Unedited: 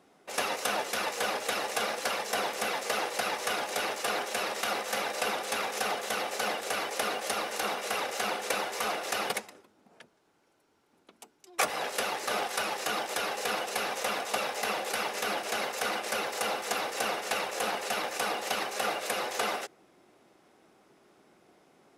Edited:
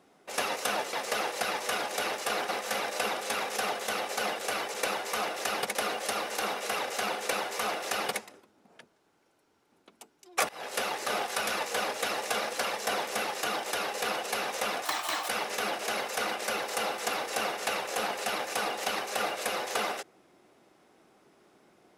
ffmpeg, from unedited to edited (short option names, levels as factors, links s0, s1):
-filter_complex "[0:a]asplit=10[s0][s1][s2][s3][s4][s5][s6][s7][s8][s9];[s0]atrim=end=0.932[s10];[s1]atrim=start=2.708:end=4.272[s11];[s2]atrim=start=4.708:end=6.962[s12];[s3]atrim=start=8.408:end=9.422[s13];[s4]atrim=start=6.958:end=11.7,asetpts=PTS-STARTPTS,afade=t=out:st=4.738:d=0.004:c=hsin:silence=0.0841395[s14];[s5]atrim=start=11.7:end=12.682,asetpts=PTS-STARTPTS,afade=t=in:d=0.3:silence=0.0841395[s15];[s6]atrim=start=0.928:end=2.712[s16];[s7]atrim=start=12.678:end=14.284[s17];[s8]atrim=start=14.28:end=14.93,asetpts=PTS-STARTPTS,asetrate=65268,aresample=44100,atrim=end_sample=19368,asetpts=PTS-STARTPTS[s18];[s9]atrim=start=14.926[s19];[s10][s11]acrossfade=d=0.004:c1=hsin:c2=hsin[s20];[s20][s12]acrossfade=d=0.004:c1=hsin:c2=hsin[s21];[s21][s13]acrossfade=d=0.004:c1=hsin:c2=hsin[s22];[s14][s15]concat=n=2:v=0:a=1[s23];[s22][s23]acrossfade=d=0.004:c1=hsin:c2=hsin[s24];[s24][s16]acrossfade=d=0.004:c1=hsin:c2=hsin[s25];[s25][s17]acrossfade=d=0.004:c1=hsin:c2=hsin[s26];[s26][s18]acrossfade=d=0.004:c1=hsin:c2=hsin[s27];[s27][s19]acrossfade=d=0.004:c1=hsin:c2=hsin"